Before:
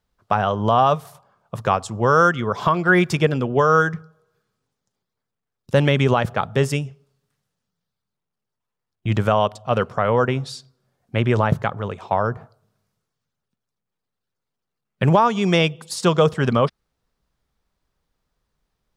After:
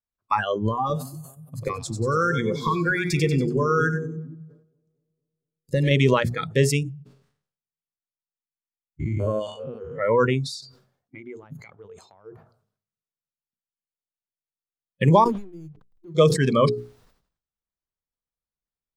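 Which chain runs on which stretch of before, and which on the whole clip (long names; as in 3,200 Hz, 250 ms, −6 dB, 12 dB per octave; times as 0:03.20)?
0:00.66–0:05.91: low-shelf EQ 130 Hz +6 dB + downward compressor 12 to 1, threshold −16 dBFS + echo with a time of its own for lows and highs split 490 Hz, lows 232 ms, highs 94 ms, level −7 dB
0:06.83–0:10.01: spectrum averaged block by block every 200 ms + high-shelf EQ 7,400 Hz −9 dB + double-tracking delay 13 ms −12.5 dB
0:10.54–0:12.35: parametric band 9,900 Hz −4 dB 0.84 octaves + downward compressor 5 to 1, threshold −28 dBFS
0:15.24–0:16.15: head-to-tape spacing loss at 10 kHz 41 dB + downward compressor, threshold −32 dBFS + slack as between gear wheels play −34 dBFS
whole clip: mains-hum notches 60/120/180/240/300/360/420 Hz; noise reduction from a noise print of the clip's start 23 dB; level that may fall only so fast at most 100 dB per second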